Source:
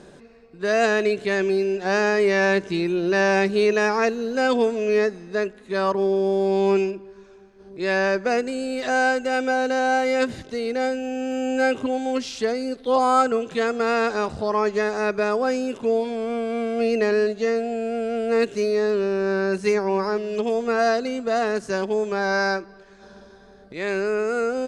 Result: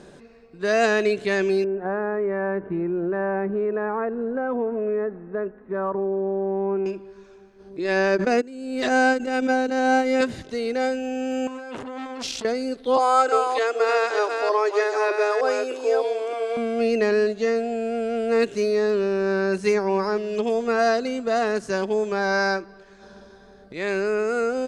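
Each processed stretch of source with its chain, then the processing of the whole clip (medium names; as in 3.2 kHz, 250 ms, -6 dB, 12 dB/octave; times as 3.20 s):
1.64–6.86 s: low-pass 1.5 kHz 24 dB/octave + compression 3:1, threshold -22 dBFS
7.78–10.21 s: gate -22 dBFS, range -18 dB + peaking EQ 300 Hz +10 dB 0.67 oct + swell ahead of each attack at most 45 dB/s
11.47–12.45 s: compressor with a negative ratio -30 dBFS + transformer saturation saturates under 1.8 kHz
12.97–16.57 s: chunks repeated in reverse 305 ms, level -5 dB + steep high-pass 280 Hz 96 dB/octave
whole clip: none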